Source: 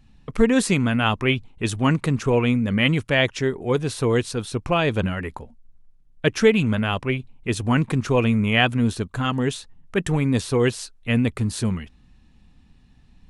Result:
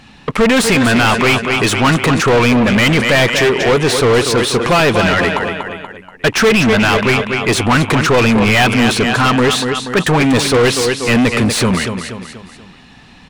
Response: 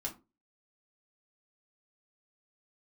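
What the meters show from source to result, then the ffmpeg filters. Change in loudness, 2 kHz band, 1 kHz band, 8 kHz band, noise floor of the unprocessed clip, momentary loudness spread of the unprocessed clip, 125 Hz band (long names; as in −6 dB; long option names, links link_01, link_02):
+9.5 dB, +12.5 dB, +13.0 dB, +13.5 dB, −54 dBFS, 9 LU, +6.0 dB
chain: -filter_complex "[0:a]aecho=1:1:240|480|720|960:0.251|0.111|0.0486|0.0214,asplit=2[link_01][link_02];[link_02]highpass=frequency=720:poles=1,volume=32dB,asoftclip=type=tanh:threshold=-3.5dB[link_03];[link_01][link_03]amix=inputs=2:normalize=0,lowpass=frequency=3700:poles=1,volume=-6dB"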